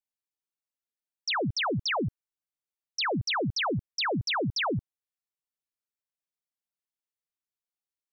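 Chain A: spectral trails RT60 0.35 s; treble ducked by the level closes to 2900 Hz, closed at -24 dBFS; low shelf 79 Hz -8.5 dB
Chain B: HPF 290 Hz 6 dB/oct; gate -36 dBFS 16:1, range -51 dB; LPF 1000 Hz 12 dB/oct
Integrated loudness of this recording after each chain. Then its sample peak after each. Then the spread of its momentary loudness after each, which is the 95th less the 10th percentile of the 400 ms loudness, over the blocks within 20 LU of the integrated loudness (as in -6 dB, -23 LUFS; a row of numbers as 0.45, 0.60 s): -28.5, -35.5 LUFS; -17.0, -26.5 dBFS; 9, 5 LU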